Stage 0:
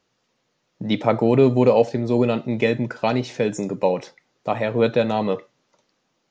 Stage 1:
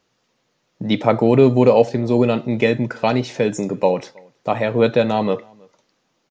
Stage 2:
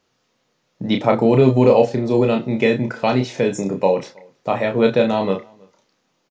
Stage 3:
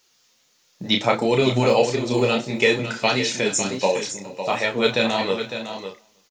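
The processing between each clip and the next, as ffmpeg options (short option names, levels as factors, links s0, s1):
-filter_complex "[0:a]asplit=2[s0][s1];[s1]adelay=320.7,volume=0.0398,highshelf=f=4000:g=-7.22[s2];[s0][s2]amix=inputs=2:normalize=0,volume=1.41"
-filter_complex "[0:a]asplit=2[s0][s1];[s1]adelay=31,volume=0.562[s2];[s0][s2]amix=inputs=2:normalize=0,volume=0.891"
-af "crystalizer=i=10:c=0,flanger=delay=2.1:depth=7.4:regen=44:speed=1.5:shape=sinusoidal,aecho=1:1:411|555:0.106|0.335,volume=0.708"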